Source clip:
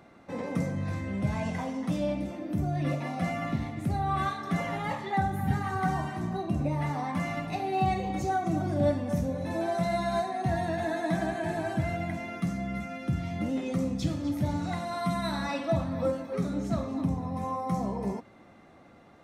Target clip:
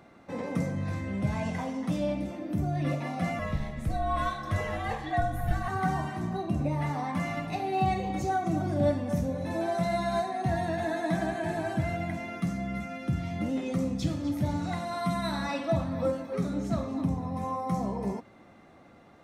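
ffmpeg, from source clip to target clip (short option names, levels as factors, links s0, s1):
-filter_complex "[0:a]asettb=1/sr,asplit=3[s0][s1][s2];[s0]atrim=end=3.394[s3];[s1]atrim=start=3.39:end=5.68,asetpts=PTS-STARTPTS,afade=t=in:d=0.004:c=qsin,afade=t=out:st=2.286:d=0.004:c=qsin,afreqshift=-78[s4];[s2]atrim=start=5.676[s5];[s3][s4]acrossfade=d=0.004:c1=hsin:c2=qsin[s6];[s6][s5]acrossfade=d=0.004:c1=qsin:c2=hsin"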